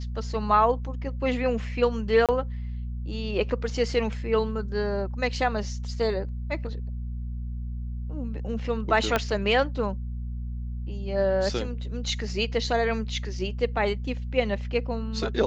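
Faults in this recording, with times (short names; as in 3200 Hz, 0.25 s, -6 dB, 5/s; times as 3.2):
hum 60 Hz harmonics 4 -32 dBFS
2.26–2.29 gap 27 ms
9.16 pop -9 dBFS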